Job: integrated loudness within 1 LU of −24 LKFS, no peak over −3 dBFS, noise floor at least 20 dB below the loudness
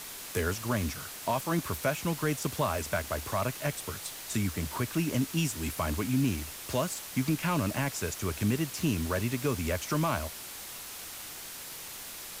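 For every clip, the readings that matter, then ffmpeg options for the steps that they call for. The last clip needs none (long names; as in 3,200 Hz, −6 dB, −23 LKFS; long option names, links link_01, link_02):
background noise floor −43 dBFS; target noise floor −52 dBFS; integrated loudness −32.0 LKFS; sample peak −17.0 dBFS; target loudness −24.0 LKFS
→ -af "afftdn=noise_reduction=9:noise_floor=-43"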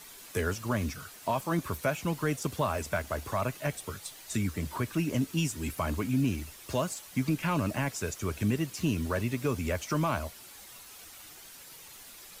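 background noise floor −50 dBFS; target noise floor −52 dBFS
→ -af "afftdn=noise_reduction=6:noise_floor=-50"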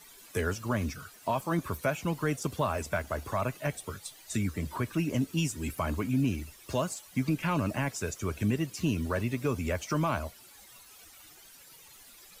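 background noise floor −54 dBFS; integrated loudness −32.0 LKFS; sample peak −18.0 dBFS; target loudness −24.0 LKFS
→ -af "volume=8dB"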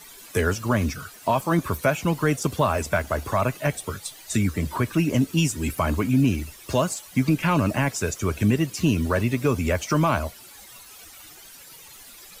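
integrated loudness −24.0 LKFS; sample peak −10.0 dBFS; background noise floor −46 dBFS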